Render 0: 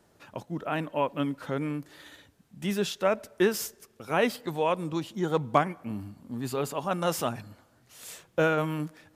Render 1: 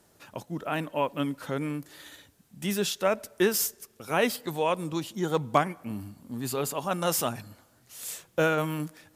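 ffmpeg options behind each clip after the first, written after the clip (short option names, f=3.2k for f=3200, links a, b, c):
-af "aemphasis=mode=production:type=cd"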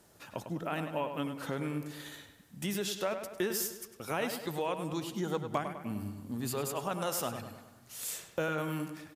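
-filter_complex "[0:a]acompressor=threshold=-34dB:ratio=2.5,asplit=2[a][b];[b]adelay=101,lowpass=f=4.1k:p=1,volume=-8dB,asplit=2[c][d];[d]adelay=101,lowpass=f=4.1k:p=1,volume=0.53,asplit=2[e][f];[f]adelay=101,lowpass=f=4.1k:p=1,volume=0.53,asplit=2[g][h];[h]adelay=101,lowpass=f=4.1k:p=1,volume=0.53,asplit=2[i][j];[j]adelay=101,lowpass=f=4.1k:p=1,volume=0.53,asplit=2[k][l];[l]adelay=101,lowpass=f=4.1k:p=1,volume=0.53[m];[a][c][e][g][i][k][m]amix=inputs=7:normalize=0"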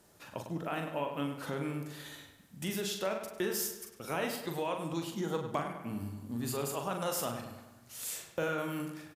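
-filter_complex "[0:a]asplit=2[a][b];[b]adelay=42,volume=-6dB[c];[a][c]amix=inputs=2:normalize=0,volume=-1.5dB"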